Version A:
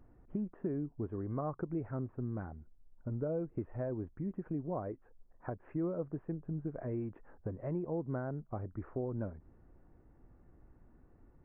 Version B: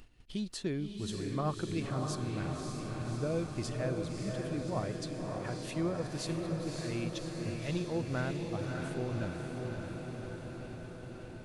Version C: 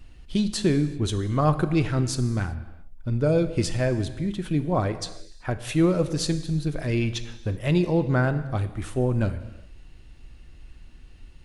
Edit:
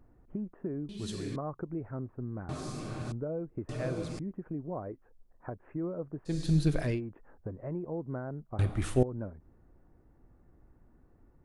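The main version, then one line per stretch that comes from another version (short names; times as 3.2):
A
0.89–1.36 from B
2.49–3.12 from B
3.69–4.19 from B
6.37–6.89 from C, crossfade 0.24 s
8.59–9.03 from C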